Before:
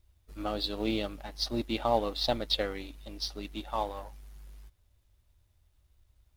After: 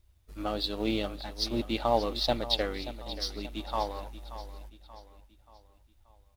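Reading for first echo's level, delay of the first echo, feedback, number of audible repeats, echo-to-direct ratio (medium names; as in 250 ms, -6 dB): -13.5 dB, 581 ms, 45%, 4, -12.5 dB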